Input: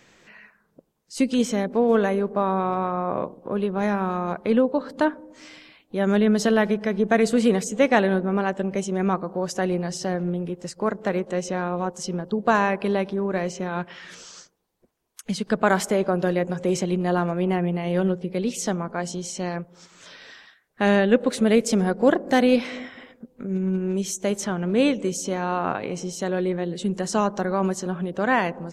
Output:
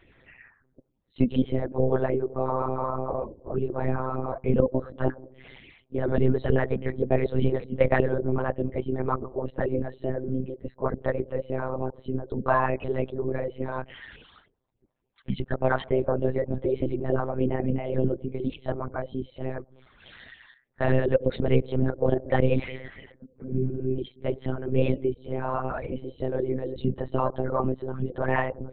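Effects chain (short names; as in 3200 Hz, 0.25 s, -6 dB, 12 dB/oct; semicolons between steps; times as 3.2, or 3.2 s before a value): formant sharpening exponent 1.5; phaser stages 12, 3.4 Hz, lowest notch 130–1500 Hz; monotone LPC vocoder at 8 kHz 130 Hz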